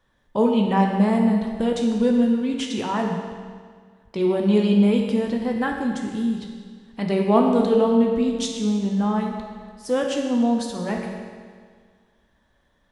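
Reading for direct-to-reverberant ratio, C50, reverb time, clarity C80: 1.0 dB, 3.0 dB, 1.8 s, 4.5 dB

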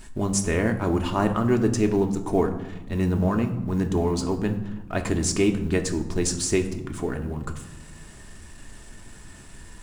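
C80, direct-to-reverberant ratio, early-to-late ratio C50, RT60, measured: 13.0 dB, 4.5 dB, 11.0 dB, 1.0 s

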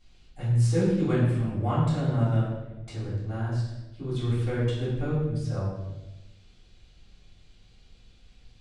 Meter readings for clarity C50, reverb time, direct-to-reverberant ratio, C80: 0.5 dB, 1.0 s, -13.0 dB, 3.5 dB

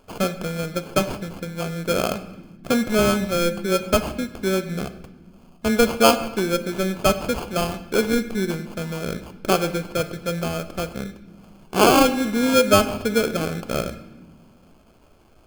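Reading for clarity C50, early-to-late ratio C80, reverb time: 12.5 dB, 14.5 dB, not exponential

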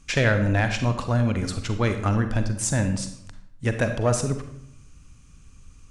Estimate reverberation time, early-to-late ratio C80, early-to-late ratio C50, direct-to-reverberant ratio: 0.70 s, 11.5 dB, 8.5 dB, 7.0 dB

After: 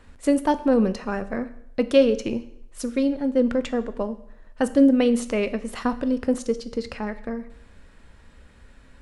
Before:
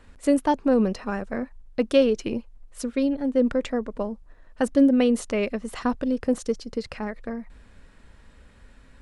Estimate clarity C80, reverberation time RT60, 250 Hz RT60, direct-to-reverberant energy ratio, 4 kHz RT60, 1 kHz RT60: 17.5 dB, 0.70 s, 0.70 s, 11.5 dB, 0.65 s, 0.70 s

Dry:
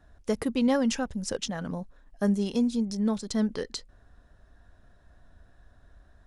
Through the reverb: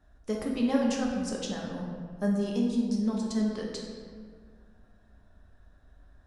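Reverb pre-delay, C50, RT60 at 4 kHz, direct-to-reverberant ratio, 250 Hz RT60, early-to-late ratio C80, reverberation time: 5 ms, 2.0 dB, 1.1 s, -1.5 dB, 2.3 s, 3.5 dB, 1.9 s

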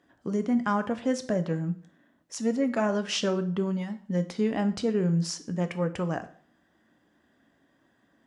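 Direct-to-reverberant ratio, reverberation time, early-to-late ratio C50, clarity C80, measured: 10.0 dB, 0.50 s, 15.0 dB, 19.0 dB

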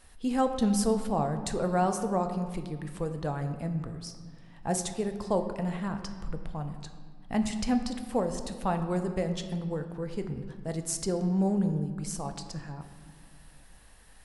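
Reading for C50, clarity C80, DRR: 9.0 dB, 10.0 dB, 6.5 dB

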